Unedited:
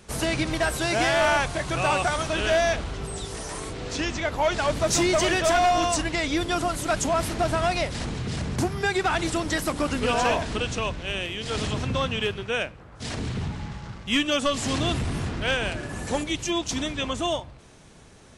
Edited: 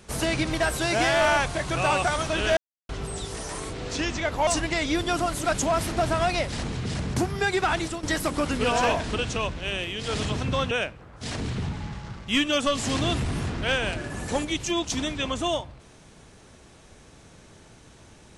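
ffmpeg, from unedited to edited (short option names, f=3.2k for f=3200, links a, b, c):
-filter_complex "[0:a]asplit=6[a][b][c][d][e][f];[a]atrim=end=2.57,asetpts=PTS-STARTPTS,afade=t=out:st=2.566:d=0.004:c=hsin[g];[b]atrim=start=2.57:end=2.89,asetpts=PTS-STARTPTS,volume=0[h];[c]atrim=start=2.89:end=4.472,asetpts=PTS-STARTPTS,afade=t=in:d=0.004:c=hsin[i];[d]atrim=start=5.888:end=9.45,asetpts=PTS-STARTPTS,afade=t=out:st=3.262:d=0.3:silence=0.266073[j];[e]atrim=start=9.45:end=12.132,asetpts=PTS-STARTPTS,afade=t=in:d=0.004:c=hsin:silence=0.266073[k];[f]atrim=start=12.498[l];[g][h][i]concat=n=3:v=0:a=1[m];[j][k]concat=n=2:v=0:a=1[n];[m][n]acrossfade=d=0.004:c1=hsin:c2=hsin[o];[o][l]acrossfade=d=0.004:c1=hsin:c2=hsin"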